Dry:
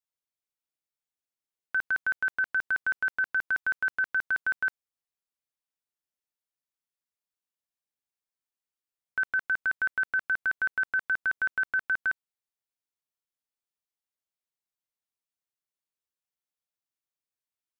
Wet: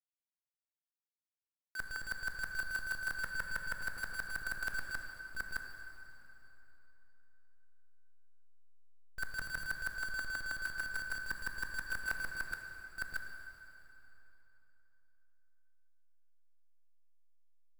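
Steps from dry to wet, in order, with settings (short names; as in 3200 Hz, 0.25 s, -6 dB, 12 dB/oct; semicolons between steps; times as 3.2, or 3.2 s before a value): reverse delay 0.627 s, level -4 dB; gate -30 dBFS, range -21 dB; high shelf 2900 Hz -5 dB; reverse; compressor 8:1, threshold -39 dBFS, peak gain reduction 16.5 dB; reverse; companded quantiser 4-bit; backlash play -37.5 dBFS; on a send: reverb RT60 3.4 s, pre-delay 13 ms, DRR 4 dB; on the sum: gain +4 dB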